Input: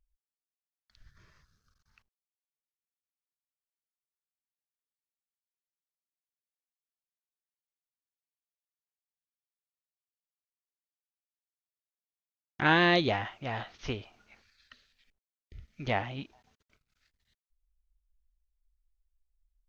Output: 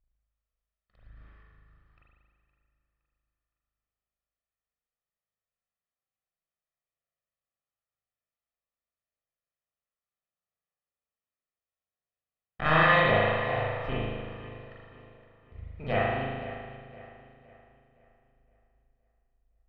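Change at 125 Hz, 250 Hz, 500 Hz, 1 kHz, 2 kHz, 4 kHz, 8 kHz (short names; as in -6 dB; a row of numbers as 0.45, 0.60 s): +4.5 dB, -1.5 dB, +5.5 dB, +5.0 dB, +3.5 dB, -1.5 dB, n/a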